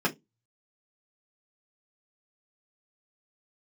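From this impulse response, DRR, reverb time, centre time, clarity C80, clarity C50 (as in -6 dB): -4.5 dB, 0.20 s, 9 ms, 31.0 dB, 19.5 dB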